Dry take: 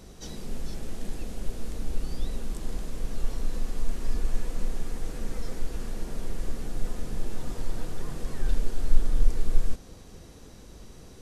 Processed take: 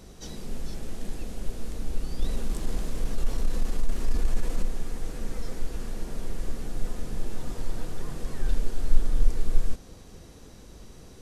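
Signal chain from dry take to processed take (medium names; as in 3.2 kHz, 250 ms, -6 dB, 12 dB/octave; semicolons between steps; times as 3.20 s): 2.19–4.65 s: waveshaping leveller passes 1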